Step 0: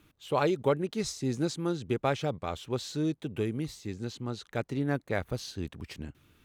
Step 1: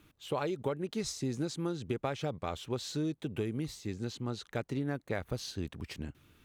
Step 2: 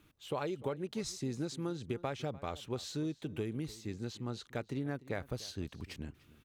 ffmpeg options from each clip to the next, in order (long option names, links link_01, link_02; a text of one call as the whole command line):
ffmpeg -i in.wav -af "acompressor=threshold=-30dB:ratio=6" out.wav
ffmpeg -i in.wav -filter_complex "[0:a]asplit=2[link_01][link_02];[link_02]adelay=297.4,volume=-19dB,highshelf=frequency=4000:gain=-6.69[link_03];[link_01][link_03]amix=inputs=2:normalize=0,volume=-3dB" out.wav